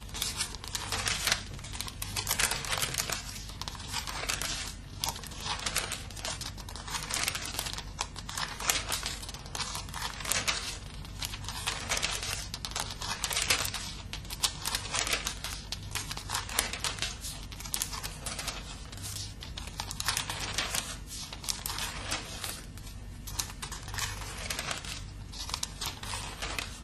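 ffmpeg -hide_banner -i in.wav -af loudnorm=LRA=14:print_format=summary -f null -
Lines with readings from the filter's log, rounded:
Input Integrated:    -33.7 LUFS
Input True Peak:      -4.0 dBTP
Input LRA:             4.9 LU
Input Threshold:     -43.7 LUFS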